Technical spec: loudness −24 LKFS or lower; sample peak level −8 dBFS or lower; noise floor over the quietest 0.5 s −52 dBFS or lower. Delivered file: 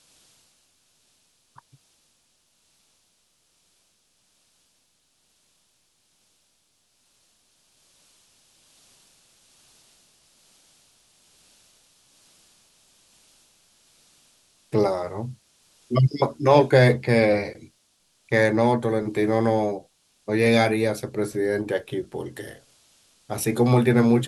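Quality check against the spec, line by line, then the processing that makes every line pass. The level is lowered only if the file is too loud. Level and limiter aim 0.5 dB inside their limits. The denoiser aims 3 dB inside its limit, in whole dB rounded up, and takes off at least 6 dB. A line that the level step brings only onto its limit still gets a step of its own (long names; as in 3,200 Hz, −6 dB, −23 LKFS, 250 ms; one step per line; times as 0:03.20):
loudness −22.0 LKFS: out of spec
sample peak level −4.0 dBFS: out of spec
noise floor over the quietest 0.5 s −67 dBFS: in spec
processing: level −2.5 dB
brickwall limiter −8.5 dBFS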